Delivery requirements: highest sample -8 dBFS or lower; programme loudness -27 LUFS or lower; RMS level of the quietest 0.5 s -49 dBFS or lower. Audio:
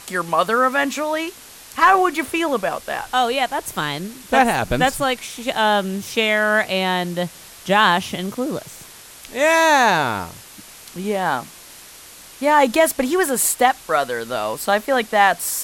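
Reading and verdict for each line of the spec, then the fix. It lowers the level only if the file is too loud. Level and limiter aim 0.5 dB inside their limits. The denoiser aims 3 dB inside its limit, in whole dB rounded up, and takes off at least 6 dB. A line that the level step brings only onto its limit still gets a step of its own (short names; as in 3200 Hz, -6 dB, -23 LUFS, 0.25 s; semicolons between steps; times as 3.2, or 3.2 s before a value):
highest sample -3.0 dBFS: fail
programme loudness -19.0 LUFS: fail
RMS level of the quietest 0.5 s -42 dBFS: fail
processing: gain -8.5 dB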